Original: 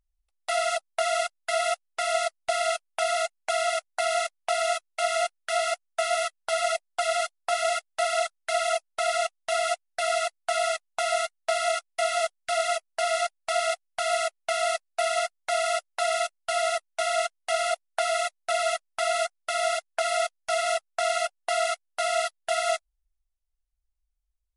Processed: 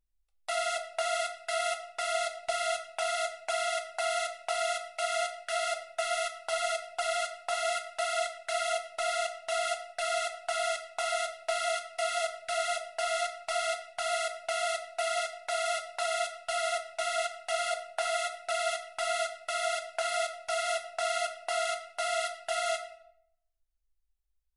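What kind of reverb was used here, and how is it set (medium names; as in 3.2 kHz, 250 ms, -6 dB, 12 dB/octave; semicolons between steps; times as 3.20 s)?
simulated room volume 150 m³, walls mixed, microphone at 0.54 m; trim -5 dB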